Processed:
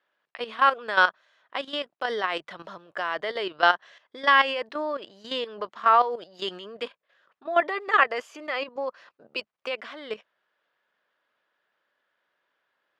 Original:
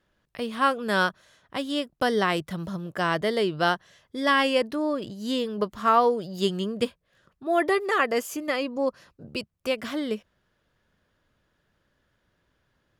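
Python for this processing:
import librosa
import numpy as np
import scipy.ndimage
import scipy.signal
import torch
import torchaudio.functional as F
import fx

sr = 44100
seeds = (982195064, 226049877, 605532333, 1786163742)

y = fx.bandpass_edges(x, sr, low_hz=670.0, high_hz=3300.0)
y = fx.level_steps(y, sr, step_db=12)
y = F.gain(torch.from_numpy(y), 7.5).numpy()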